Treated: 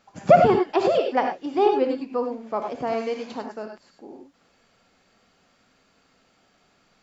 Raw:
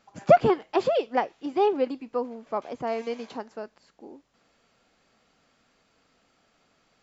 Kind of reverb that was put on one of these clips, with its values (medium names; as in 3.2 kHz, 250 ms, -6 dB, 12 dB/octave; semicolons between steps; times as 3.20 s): gated-style reverb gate 120 ms rising, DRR 3.5 dB; trim +2 dB